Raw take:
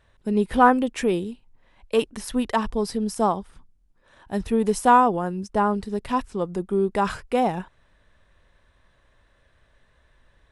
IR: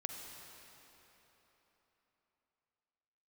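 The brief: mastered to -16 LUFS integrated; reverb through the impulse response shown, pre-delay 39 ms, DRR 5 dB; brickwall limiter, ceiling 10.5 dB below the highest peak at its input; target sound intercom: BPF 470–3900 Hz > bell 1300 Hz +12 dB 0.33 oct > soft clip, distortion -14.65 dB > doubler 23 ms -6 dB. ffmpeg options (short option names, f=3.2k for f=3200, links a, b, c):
-filter_complex "[0:a]alimiter=limit=-14dB:level=0:latency=1,asplit=2[a][b];[1:a]atrim=start_sample=2205,adelay=39[c];[b][c]afir=irnorm=-1:irlink=0,volume=-4.5dB[d];[a][d]amix=inputs=2:normalize=0,highpass=470,lowpass=3.9k,equalizer=f=1.3k:t=o:w=0.33:g=12,asoftclip=threshold=-15.5dB,asplit=2[e][f];[f]adelay=23,volume=-6dB[g];[e][g]amix=inputs=2:normalize=0,volume=11dB"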